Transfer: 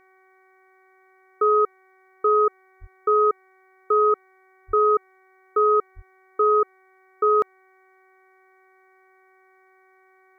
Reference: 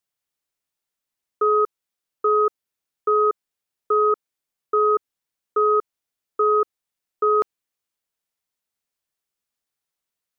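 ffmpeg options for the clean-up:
-filter_complex "[0:a]bandreject=f=377.1:t=h:w=4,bandreject=f=754.2:t=h:w=4,bandreject=f=1131.3:t=h:w=4,bandreject=f=1508.4:t=h:w=4,bandreject=f=1885.5:t=h:w=4,bandreject=f=2262.6:t=h:w=4,asplit=3[s0][s1][s2];[s0]afade=t=out:st=2.8:d=0.02[s3];[s1]highpass=f=140:w=0.5412,highpass=f=140:w=1.3066,afade=t=in:st=2.8:d=0.02,afade=t=out:st=2.92:d=0.02[s4];[s2]afade=t=in:st=2.92:d=0.02[s5];[s3][s4][s5]amix=inputs=3:normalize=0,asplit=3[s6][s7][s8];[s6]afade=t=out:st=4.67:d=0.02[s9];[s7]highpass=f=140:w=0.5412,highpass=f=140:w=1.3066,afade=t=in:st=4.67:d=0.02,afade=t=out:st=4.79:d=0.02[s10];[s8]afade=t=in:st=4.79:d=0.02[s11];[s9][s10][s11]amix=inputs=3:normalize=0,asplit=3[s12][s13][s14];[s12]afade=t=out:st=5.95:d=0.02[s15];[s13]highpass=f=140:w=0.5412,highpass=f=140:w=1.3066,afade=t=in:st=5.95:d=0.02,afade=t=out:st=6.07:d=0.02[s16];[s14]afade=t=in:st=6.07:d=0.02[s17];[s15][s16][s17]amix=inputs=3:normalize=0"

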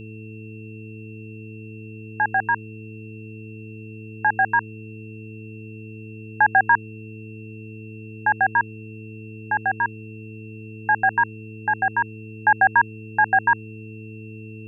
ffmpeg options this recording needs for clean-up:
-af "bandreject=f=109.2:t=h:w=4,bandreject=f=218.4:t=h:w=4,bandreject=f=327.6:t=h:w=4,bandreject=f=436.8:t=h:w=4,bandreject=f=2700:w=30,agate=range=0.0891:threshold=0.0316"

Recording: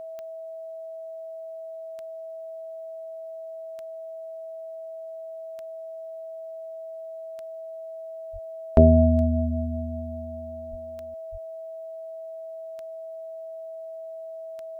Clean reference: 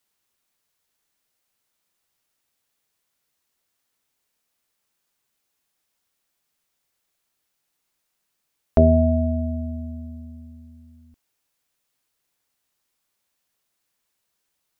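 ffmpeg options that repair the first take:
-filter_complex "[0:a]adeclick=t=4,bandreject=f=650:w=30,asplit=3[s0][s1][s2];[s0]afade=t=out:st=8.32:d=0.02[s3];[s1]highpass=f=140:w=0.5412,highpass=f=140:w=1.3066,afade=t=in:st=8.32:d=0.02,afade=t=out:st=8.44:d=0.02[s4];[s2]afade=t=in:st=8.44:d=0.02[s5];[s3][s4][s5]amix=inputs=3:normalize=0,asplit=3[s6][s7][s8];[s6]afade=t=out:st=10.7:d=0.02[s9];[s7]highpass=f=140:w=0.5412,highpass=f=140:w=1.3066,afade=t=in:st=10.7:d=0.02,afade=t=out:st=10.82:d=0.02[s10];[s8]afade=t=in:st=10.82:d=0.02[s11];[s9][s10][s11]amix=inputs=3:normalize=0,asplit=3[s12][s13][s14];[s12]afade=t=out:st=11.31:d=0.02[s15];[s13]highpass=f=140:w=0.5412,highpass=f=140:w=1.3066,afade=t=in:st=11.31:d=0.02,afade=t=out:st=11.43:d=0.02[s16];[s14]afade=t=in:st=11.43:d=0.02[s17];[s15][s16][s17]amix=inputs=3:normalize=0"

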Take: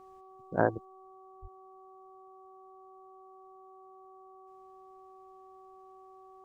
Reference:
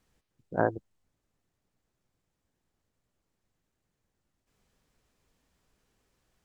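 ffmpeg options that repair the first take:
-filter_complex "[0:a]bandreject=f=379:t=h:w=4,bandreject=f=758:t=h:w=4,bandreject=f=1137:t=h:w=4,asplit=3[s0][s1][s2];[s0]afade=t=out:st=1.41:d=0.02[s3];[s1]highpass=f=140:w=0.5412,highpass=f=140:w=1.3066,afade=t=in:st=1.41:d=0.02,afade=t=out:st=1.53:d=0.02[s4];[s2]afade=t=in:st=1.53:d=0.02[s5];[s3][s4][s5]amix=inputs=3:normalize=0,asetnsamples=n=441:p=0,asendcmd='0.85 volume volume 5.5dB',volume=1"

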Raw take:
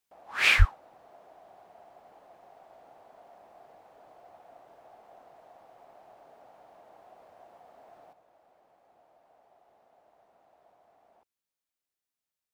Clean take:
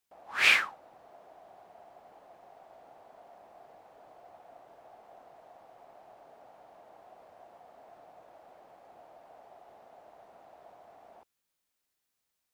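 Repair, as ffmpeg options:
-filter_complex "[0:a]asplit=3[s0][s1][s2];[s0]afade=t=out:st=0.58:d=0.02[s3];[s1]highpass=f=140:w=0.5412,highpass=f=140:w=1.3066,afade=t=in:st=0.58:d=0.02,afade=t=out:st=0.7:d=0.02[s4];[s2]afade=t=in:st=0.7:d=0.02[s5];[s3][s4][s5]amix=inputs=3:normalize=0,asetnsamples=n=441:p=0,asendcmd='8.13 volume volume 9dB',volume=1"

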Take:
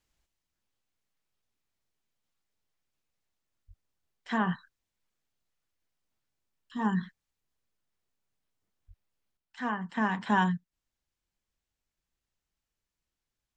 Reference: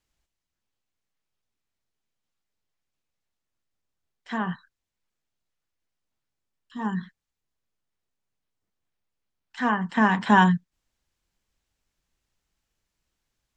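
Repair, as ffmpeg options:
-filter_complex "[0:a]asplit=3[s0][s1][s2];[s0]afade=t=out:st=3.67:d=0.02[s3];[s1]highpass=f=140:w=0.5412,highpass=f=140:w=1.3066,afade=t=in:st=3.67:d=0.02,afade=t=out:st=3.79:d=0.02[s4];[s2]afade=t=in:st=3.79:d=0.02[s5];[s3][s4][s5]amix=inputs=3:normalize=0,asplit=3[s6][s7][s8];[s6]afade=t=out:st=8.87:d=0.02[s9];[s7]highpass=f=140:w=0.5412,highpass=f=140:w=1.3066,afade=t=in:st=8.87:d=0.02,afade=t=out:st=8.99:d=0.02[s10];[s8]afade=t=in:st=8.99:d=0.02[s11];[s9][s10][s11]amix=inputs=3:normalize=0,asetnsamples=n=441:p=0,asendcmd='9.37 volume volume 8.5dB',volume=1"

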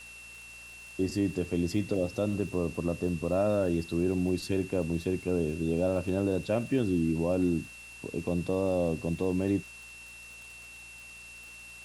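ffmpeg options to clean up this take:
-af "adeclick=t=4,bandreject=f=58.3:t=h:w=4,bandreject=f=116.6:t=h:w=4,bandreject=f=174.9:t=h:w=4,bandreject=f=233.2:t=h:w=4,bandreject=f=2700:w=30,afftdn=nr=28:nf=-48"

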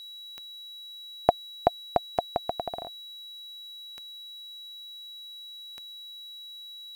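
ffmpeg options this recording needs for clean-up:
-af "adeclick=t=4,bandreject=f=3900:w=30,afftdn=nr=30:nf=-44"

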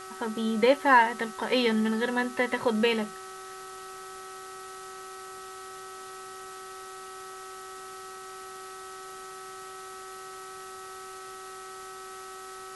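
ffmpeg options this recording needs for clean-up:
-af "adeclick=t=4,bandreject=f=379.4:t=h:w=4,bandreject=f=758.8:t=h:w=4,bandreject=f=1138.2:t=h:w=4,bandreject=f=1517.6:t=h:w=4,bandreject=f=1897:t=h:w=4,bandreject=f=1300:w=30,afftdn=nr=30:nf=-43"

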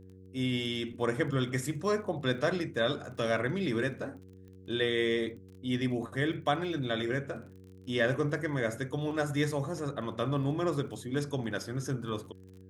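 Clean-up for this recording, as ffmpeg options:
-af "adeclick=t=4,bandreject=f=94:t=h:w=4,bandreject=f=188:t=h:w=4,bandreject=f=282:t=h:w=4,bandreject=f=376:t=h:w=4,bandreject=f=470:t=h:w=4"

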